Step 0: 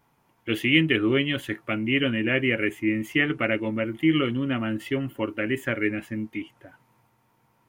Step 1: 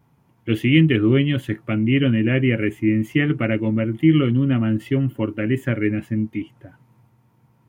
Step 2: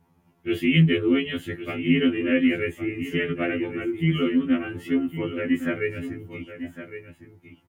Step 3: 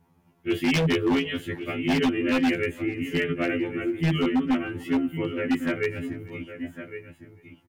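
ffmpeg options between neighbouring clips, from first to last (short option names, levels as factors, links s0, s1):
-af "equalizer=f=120:t=o:w=2.8:g=14.5,volume=0.794"
-af "aecho=1:1:1110:0.266,afftfilt=real='re*2*eq(mod(b,4),0)':imag='im*2*eq(mod(b,4),0)':win_size=2048:overlap=0.75"
-af "aeval=exprs='0.15*(abs(mod(val(0)/0.15+3,4)-2)-1)':c=same,aecho=1:1:444:0.075"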